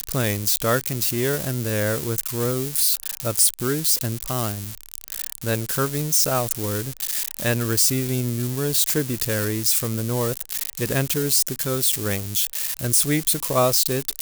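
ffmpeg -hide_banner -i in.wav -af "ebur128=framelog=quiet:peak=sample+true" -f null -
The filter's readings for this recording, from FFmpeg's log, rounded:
Integrated loudness:
  I:         -21.1 LUFS
  Threshold: -31.2 LUFS
Loudness range:
  LRA:         2.1 LU
  Threshold: -41.4 LUFS
  LRA low:   -22.6 LUFS
  LRA high:  -20.5 LUFS
Sample peak:
  Peak:       -6.4 dBFS
True peak:
  Peak:       -6.2 dBFS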